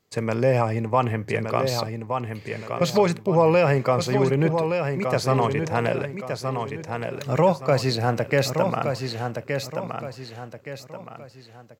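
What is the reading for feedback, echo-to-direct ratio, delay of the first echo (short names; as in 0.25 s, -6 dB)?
36%, -5.5 dB, 1.17 s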